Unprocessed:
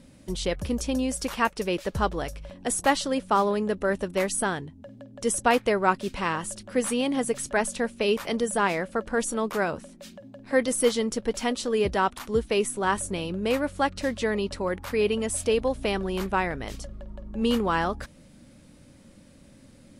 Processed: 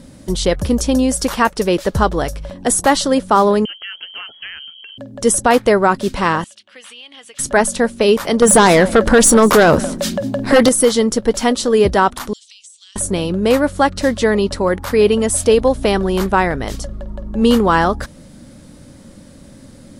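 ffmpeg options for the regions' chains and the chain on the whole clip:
-filter_complex "[0:a]asettb=1/sr,asplit=3[s0][s1][s2];[s0]atrim=end=3.654[s3];[s1]atrim=start=3.65:end=4.98,asetpts=PTS-STARTPTS,afade=t=in:d=0.004:c=qsin,afade=t=out:st=1.326:d=0.004:c=qsin,acompressor=threshold=0.01:ratio=3:attack=3.2:release=140:knee=1:detection=peak,lowpass=f=2800:t=q:w=0.5098,lowpass=f=2800:t=q:w=0.6013,lowpass=f=2800:t=q:w=0.9,lowpass=f=2800:t=q:w=2.563,afreqshift=-3300[s4];[s2]atrim=start=4.976[s5];[s3][s4]acrossfade=d=0.004:c1=hsin:c2=qsin[s6];[s6][s5]acrossfade=d=0.004:c1=qsin:c2=hsin,asettb=1/sr,asplit=3[s7][s8][s9];[s7]atrim=end=6.444[s10];[s8]atrim=start=6.44:end=7.39,asetpts=PTS-STARTPTS,afade=t=in:d=0.004:c=qsin,afade=t=out:st=0.946:d=0.004:c=qsin,bandpass=f=2900:t=q:w=3.4,acompressor=threshold=0.00562:ratio=3:attack=3.2:release=140:knee=1:detection=peak[s11];[s9]atrim=start=7.386[s12];[s10][s11]acrossfade=d=0.004:c1=hsin:c2=qsin[s13];[s13][s12]acrossfade=d=0.004:c1=qsin:c2=hsin,asettb=1/sr,asplit=3[s14][s15][s16];[s14]atrim=end=8.424[s17];[s15]atrim=start=8.42:end=10.69,asetpts=PTS-STARTPTS,afade=t=in:d=0.004:c=qsin,afade=t=out:st=2.266:d=0.004:c=qsin,acompressor=threshold=0.0316:ratio=2:attack=3.2:release=140:knee=1:detection=peak,aeval=exprs='0.158*sin(PI/2*2.82*val(0)/0.158)':c=same,aecho=1:1:195:0.0841,atrim=end_sample=100107[s18];[s16]atrim=start=10.686[s19];[s17][s18]acrossfade=d=0.004:c1=hsin:c2=qsin[s20];[s20][s19]acrossfade=d=0.004:c1=qsin:c2=hsin,asettb=1/sr,asplit=3[s21][s22][s23];[s21]atrim=end=12.334[s24];[s22]atrim=start=12.33:end=12.96,asetpts=PTS-STARTPTS,afade=t=in:d=0.004:c=qsin,afade=t=out:st=0.626:d=0.004:c=qsin,asuperpass=centerf=5000:order=8:qfactor=0.93,acompressor=threshold=0.00316:ratio=6:attack=3.2:release=140:knee=1:detection=peak[s25];[s23]atrim=start=12.956[s26];[s24][s25]acrossfade=d=0.004:c1=hsin:c2=qsin[s27];[s27][s26]acrossfade=d=0.004:c1=qsin:c2=hsin,equalizer=f=2500:t=o:w=0.59:g=-6,alimiter=level_in=4.47:limit=0.891:release=50:level=0:latency=1,volume=0.891"

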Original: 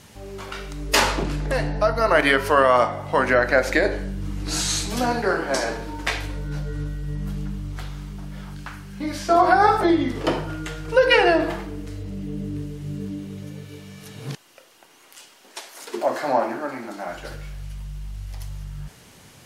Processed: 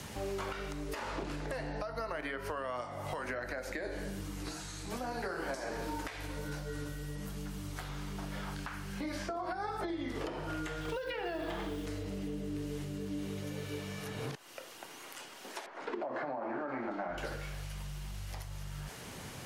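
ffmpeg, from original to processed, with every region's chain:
-filter_complex "[0:a]asettb=1/sr,asplit=3[s0][s1][s2];[s0]atrim=end=2.814[s3];[s1]atrim=start=2.81:end=7.89,asetpts=PTS-STARTPTS,afade=t=in:d=0.004:c=qsin,afade=t=out:st=5.076:d=0.004:c=qsin,highshelf=f=5700:g=10,flanger=delay=6.6:depth=6.7:regen=-70:speed=1.3:shape=sinusoidal[s4];[s2]atrim=start=7.886[s5];[s3][s4]acrossfade=d=0.004:c1=hsin:c2=qsin[s6];[s6][s5]acrossfade=d=0.004:c1=qsin:c2=hsin,asettb=1/sr,asplit=3[s7][s8][s9];[s7]atrim=end=10.814[s10];[s8]atrim=start=10.81:end=11.86,asetpts=PTS-STARTPTS,afade=t=in:d=0.004:c=qsin,afade=t=out:st=1.046:d=0.004:c=qsin,equalizer=f=3400:t=o:w=0.31:g=10.5,acrusher=bits=7:mode=log:mix=0:aa=0.000001[s11];[s9]atrim=start=11.856[s12];[s10][s11]acrossfade=d=0.004:c1=hsin:c2=qsin[s13];[s13][s12]acrossfade=d=0.004:c1=qsin:c2=hsin,asettb=1/sr,asplit=3[s14][s15][s16];[s14]atrim=end=15.664[s17];[s15]atrim=start=15.66:end=17.18,asetpts=PTS-STARTPTS,afade=t=in:d=0.004:c=qsin,afade=t=out:st=1.516:d=0.004:c=qsin,lowpass=1700,acompressor=threshold=0.0501:ratio=2.5:attack=3.2:release=140:knee=1:detection=peak[s18];[s16]atrim=start=17.176[s19];[s17][s18]acrossfade=d=0.004:c1=hsin:c2=qsin[s20];[s20][s19]acrossfade=d=0.004:c1=qsin:c2=hsin,acompressor=threshold=0.0282:ratio=6,alimiter=level_in=1.5:limit=0.0631:level=0:latency=1:release=383,volume=0.668,acrossover=split=84|300|2200[s21][s22][s23][s24];[s21]acompressor=threshold=0.00282:ratio=4[s25];[s22]acompressor=threshold=0.00282:ratio=4[s26];[s23]acompressor=threshold=0.01:ratio=4[s27];[s24]acompressor=threshold=0.002:ratio=4[s28];[s25][s26][s27][s28]amix=inputs=4:normalize=0,volume=1.58"

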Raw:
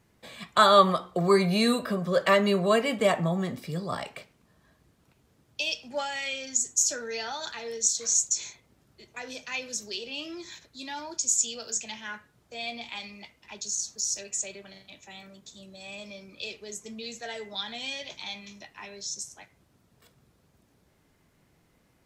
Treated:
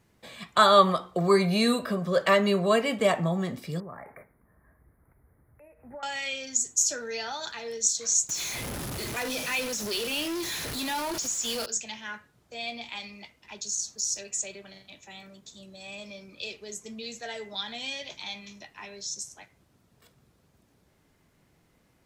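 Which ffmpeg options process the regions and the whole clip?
-filter_complex "[0:a]asettb=1/sr,asplit=3[s0][s1][s2];[s0]atrim=end=3.804[s3];[s1]atrim=start=3.8:end=6.03,asetpts=PTS-STARTPTS,afade=t=in:d=0.004:c=qsin,afade=t=out:st=2.226:d=0.004:c=qsin,acompressor=threshold=0.0141:ratio=10:attack=3.2:release=140:knee=1:detection=peak,asuperstop=centerf=4800:order=20:qfactor=0.64,asubboost=boost=8.5:cutoff=83[s4];[s2]atrim=start=6.026[s5];[s3][s4]acrossfade=d=0.004:c1=hsin:c2=qsin[s6];[s6][s5]acrossfade=d=0.004:c1=qsin:c2=hsin,asettb=1/sr,asplit=3[s7][s8][s9];[s7]atrim=end=8.294[s10];[s8]atrim=start=8.29:end=11.66,asetpts=PTS-STARTPTS,afade=t=in:d=0.004:c=qsin,afade=t=out:st=3.366:d=0.004:c=qsin,aeval=exprs='val(0)+0.5*0.0355*sgn(val(0))':c=same,acrossover=split=5100[s11][s12];[s12]acompressor=threshold=0.0178:ratio=4:attack=1:release=60[s13];[s11][s13]amix=inputs=2:normalize=0,equalizer=f=11000:w=5.6:g=10[s14];[s9]atrim=start=11.656[s15];[s10][s14]acrossfade=d=0.004:c1=hsin:c2=qsin[s16];[s16][s15]acrossfade=d=0.004:c1=qsin:c2=hsin"

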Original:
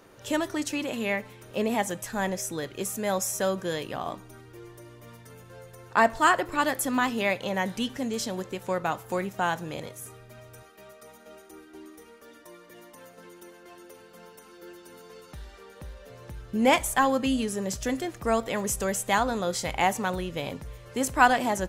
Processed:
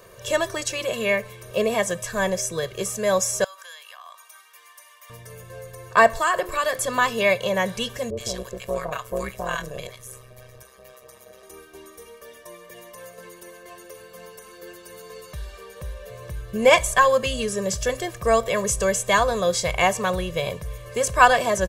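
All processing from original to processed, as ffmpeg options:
-filter_complex "[0:a]asettb=1/sr,asplit=3[s0][s1][s2];[s0]atrim=end=3.444[s3];[s1]atrim=start=3.44:end=5.1,asetpts=PTS-STARTPTS,afade=t=in:d=0.004:c=qsin,afade=t=out:st=1.656:d=0.004:c=qsin,highpass=f=950:w=0.5412,highpass=f=950:w=1.3066,acompressor=threshold=0.00501:ratio=6:attack=3.2:release=140:knee=1:detection=peak[s4];[s2]atrim=start=5.096[s5];[s3][s4]acrossfade=d=0.004:c1=hsin:c2=qsin[s6];[s6][s5]acrossfade=d=0.004:c1=qsin:c2=hsin,asettb=1/sr,asplit=3[s7][s8][s9];[s7]atrim=end=6.154[s10];[s8]atrim=start=6.15:end=6.78,asetpts=PTS-STARTPTS,afade=t=in:d=0.004:c=qsin,afade=t=out:st=0.626:d=0.004:c=qsin,highshelf=f=11000:g=5.5,bandreject=f=60:t=h:w=6,bandreject=f=120:t=h:w=6,bandreject=f=180:t=h:w=6,bandreject=f=240:t=h:w=6,bandreject=f=300:t=h:w=6,bandreject=f=360:t=h:w=6,acompressor=threshold=0.0562:ratio=2.5:attack=3.2:release=140:knee=1:detection=peak[s11];[s9]atrim=start=6.776[s12];[s10][s11]acrossfade=d=0.004:c1=hsin:c2=qsin[s13];[s13][s12]acrossfade=d=0.004:c1=qsin:c2=hsin,asettb=1/sr,asplit=3[s14][s15][s16];[s14]atrim=end=8.104[s17];[s15]atrim=start=8.1:end=11.43,asetpts=PTS-STARTPTS,afade=t=in:d=0.004:c=qsin,afade=t=out:st=3.326:d=0.004:c=qsin,acrossover=split=870[s18][s19];[s19]adelay=70[s20];[s18][s20]amix=inputs=2:normalize=0,atrim=end_sample=146853,tremolo=f=130:d=0.919[s21];[s16]atrim=start=11.426[s22];[s17][s21]acrossfade=d=0.004:c1=hsin:c2=qsin[s23];[s23][s22]acrossfade=d=0.004:c1=qsin:c2=hsin,acrossover=split=8900[s24][s25];[s25]acompressor=threshold=0.00158:ratio=4:attack=1:release=60[s26];[s24][s26]amix=inputs=2:normalize=0,highshelf=f=8500:g=7,aecho=1:1:1.8:0.96,volume=1.41"

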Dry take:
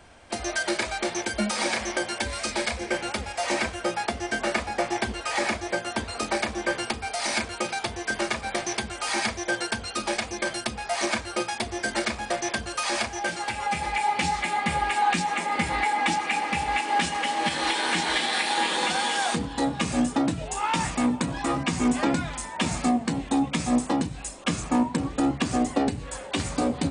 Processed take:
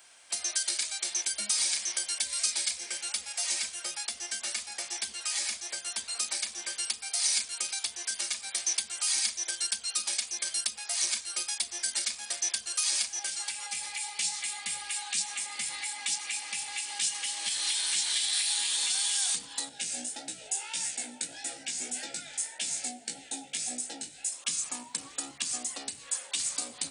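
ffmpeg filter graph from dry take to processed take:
-filter_complex "[0:a]asettb=1/sr,asplit=3[s0][s1][s2];[s0]atrim=end=19.694[s3];[s1]atrim=start=19.69:end=24.32,asetpts=PTS-STARTPTS,afade=t=in:d=0.004:c=qsin,afade=t=out:st=4.626:d=0.004:c=qsin,equalizer=f=450:w=1:g=6,flanger=delay=15.5:depth=4.8:speed=1.7,asuperstop=centerf=1100:order=8:qfactor=2.6[s4];[s2]atrim=start=24.316[s5];[s3][s4]acrossfade=d=0.004:c1=hsin:c2=qsin[s6];[s6][s5]acrossfade=d=0.004:c1=qsin:c2=hsin,aderivative,acrossover=split=220|3000[s7][s8][s9];[s8]acompressor=threshold=0.00282:ratio=5[s10];[s7][s10][s9]amix=inputs=3:normalize=0,volume=2.11"

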